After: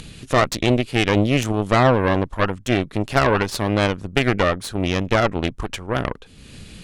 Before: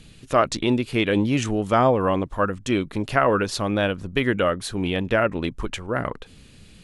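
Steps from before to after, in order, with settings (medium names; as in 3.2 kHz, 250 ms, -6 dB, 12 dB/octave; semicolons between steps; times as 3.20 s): Chebyshev shaper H 4 -12 dB, 8 -20 dB, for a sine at -4 dBFS; upward compressor, threshold -29 dBFS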